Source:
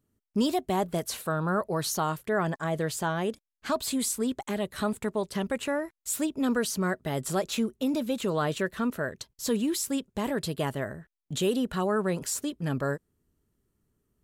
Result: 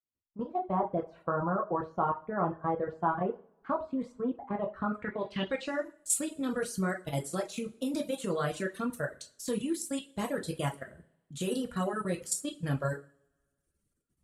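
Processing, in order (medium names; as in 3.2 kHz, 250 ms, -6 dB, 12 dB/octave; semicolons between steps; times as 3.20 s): fade-in on the opening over 0.95 s; peaking EQ 900 Hz -5.5 dB 0.25 oct; level held to a coarse grid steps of 15 dB; two-slope reverb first 0.54 s, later 2 s, from -25 dB, DRR 0 dB; low-pass sweep 1 kHz -> 9.9 kHz, 4.76–6.10 s; reverb removal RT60 1.1 s; trim -2 dB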